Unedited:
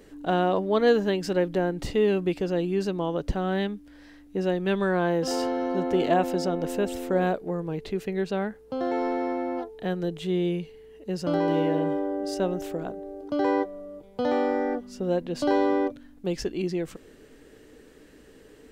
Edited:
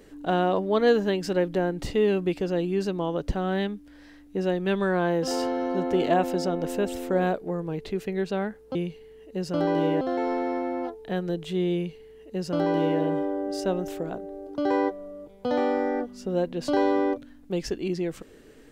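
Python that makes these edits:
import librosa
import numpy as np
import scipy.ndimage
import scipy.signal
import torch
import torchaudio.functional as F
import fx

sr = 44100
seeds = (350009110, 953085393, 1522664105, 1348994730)

y = fx.edit(x, sr, fx.duplicate(start_s=10.48, length_s=1.26, to_s=8.75), tone=tone)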